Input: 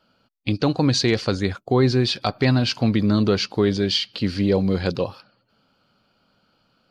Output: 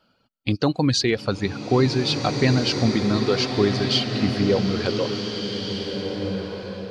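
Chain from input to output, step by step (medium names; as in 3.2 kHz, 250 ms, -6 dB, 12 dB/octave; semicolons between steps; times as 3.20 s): reverb removal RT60 1.8 s; swelling reverb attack 1770 ms, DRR 3.5 dB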